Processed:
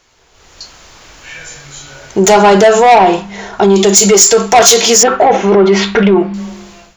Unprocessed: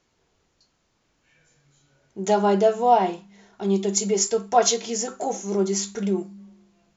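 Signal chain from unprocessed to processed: in parallel at +2 dB: compression, threshold -29 dBFS, peak gain reduction 16 dB; 2.92–3.76 s: on the sum: treble shelf 2.3 kHz -9.5 dB; 5.03–6.34 s: low-pass 3 kHz 24 dB/octave; peaking EQ 200 Hz -11 dB 2.3 oct; saturation -21.5 dBFS, distortion -8 dB; level rider gain up to 16 dB; loudness maximiser +11.5 dB; trim -1 dB

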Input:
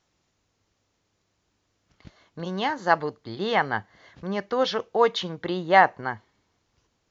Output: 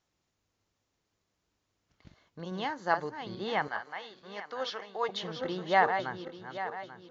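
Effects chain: backward echo that repeats 419 ms, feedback 56%, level -7.5 dB; 3.68–5.09 s: high-pass 970 Hz 6 dB/octave; trim -8 dB

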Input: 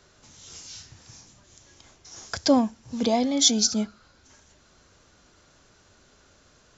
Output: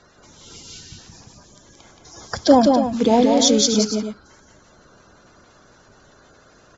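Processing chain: coarse spectral quantiser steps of 30 dB; treble shelf 3.4 kHz -8.5 dB; loudspeakers at several distances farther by 60 m -4 dB, 96 m -10 dB; trim +7.5 dB

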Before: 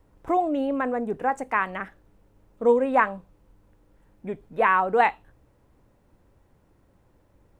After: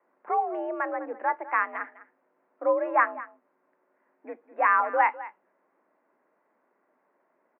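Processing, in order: on a send: delay 203 ms -17 dB; on the sum: mistuned SSB +68 Hz 220–2100 Hz; peaking EQ 370 Hz -9 dB 1.3 oct

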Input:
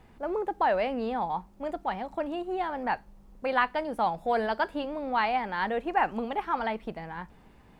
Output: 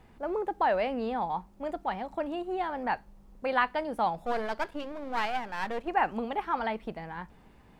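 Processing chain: 4.25–5.88 s: partial rectifier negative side -12 dB; trim -1 dB

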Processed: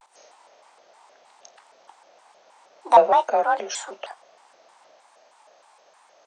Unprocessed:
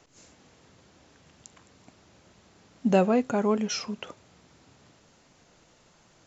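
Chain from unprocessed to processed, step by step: frequency shift +42 Hz; formant shift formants +3 st; resonant high-pass 750 Hz, resonance Q 4; doubling 26 ms -13 dB; vibrato with a chosen wave square 3.2 Hz, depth 250 cents

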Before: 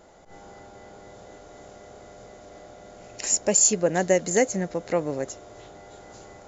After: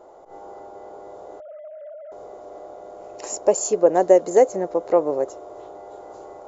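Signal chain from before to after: 1.40–2.12 s: formants replaced by sine waves; high-order bell 620 Hz +16 dB 2.3 oct; trim -8.5 dB

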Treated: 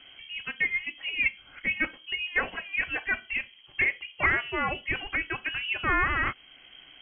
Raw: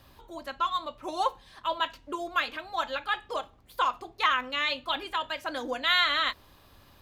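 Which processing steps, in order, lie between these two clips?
in parallel at -3 dB: compression, threshold -41 dBFS, peak gain reduction 20 dB; on the sum: frequency inversion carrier 3.2 kHz

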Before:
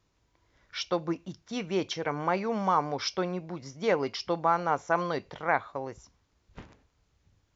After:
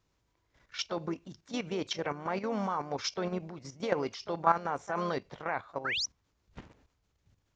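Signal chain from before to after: painted sound rise, 5.85–6.06 s, 1.2–6.3 kHz -29 dBFS; harmony voices +3 st -12 dB; level held to a coarse grid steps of 11 dB; trim +1 dB

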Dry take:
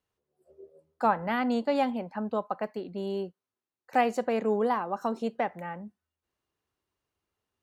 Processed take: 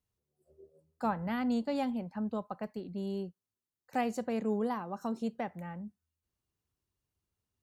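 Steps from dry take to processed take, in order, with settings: tone controls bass +13 dB, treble +8 dB; trim -9 dB

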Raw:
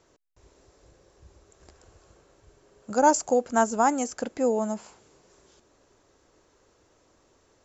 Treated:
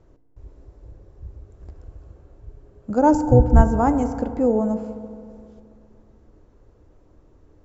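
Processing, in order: 3.13–3.62 s: octave divider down 2 oct, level +2 dB; tilt EQ -4.5 dB/octave; FDN reverb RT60 2.4 s, low-frequency decay 1.1×, high-frequency decay 0.3×, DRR 10 dB; trim -1 dB

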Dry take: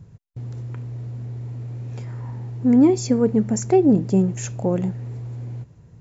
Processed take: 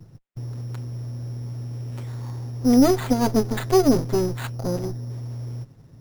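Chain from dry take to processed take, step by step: comb filter that takes the minimum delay 7.6 ms; 4.47–5.10 s: low-pass 1.1 kHz 6 dB/octave; careless resampling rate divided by 8×, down none, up hold

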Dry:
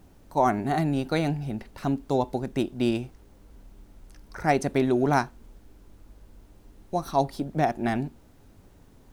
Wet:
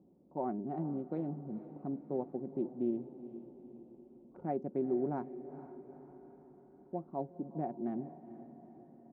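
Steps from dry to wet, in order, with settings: local Wiener filter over 25 samples; comb 5.5 ms, depth 30%; in parallel at -0.5 dB: compression, threshold -38 dBFS, peak gain reduction 20.5 dB; on the sum: ladder band-pass 320 Hz, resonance 20%; on a send: echo that smears into a reverb 451 ms, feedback 56%, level -13.5 dB

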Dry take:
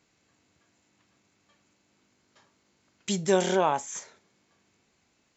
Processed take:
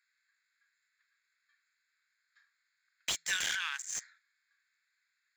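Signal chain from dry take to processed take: local Wiener filter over 15 samples; elliptic high-pass 1.6 kHz, stop band 60 dB; slew-rate limiter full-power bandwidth 87 Hz; trim +5.5 dB

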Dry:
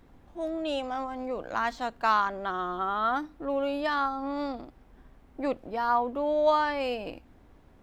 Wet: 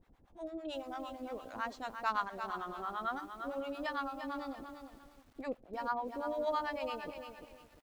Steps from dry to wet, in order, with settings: harmonic tremolo 8.9 Hz, depth 100%, crossover 660 Hz; on a send: delay 534 ms -22 dB; on the sum: bit-crushed delay 347 ms, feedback 35%, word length 9-bit, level -7.5 dB; trim -5.5 dB

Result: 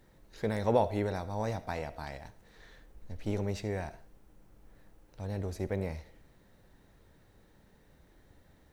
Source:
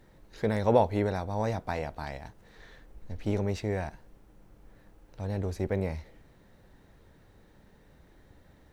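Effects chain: treble shelf 5.1 kHz +5 dB; reverberation RT60 0.35 s, pre-delay 35 ms, DRR 15 dB; trim -4 dB

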